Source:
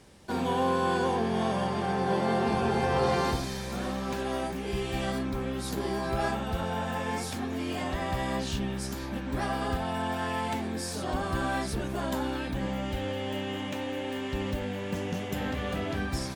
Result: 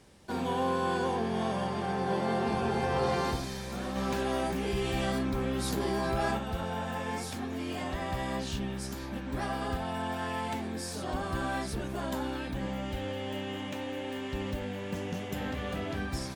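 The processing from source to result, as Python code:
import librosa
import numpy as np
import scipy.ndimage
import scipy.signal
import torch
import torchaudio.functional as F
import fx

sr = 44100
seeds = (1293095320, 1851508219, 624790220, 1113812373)

y = fx.env_flatten(x, sr, amount_pct=50, at=(3.95, 6.37), fade=0.02)
y = y * librosa.db_to_amplitude(-3.0)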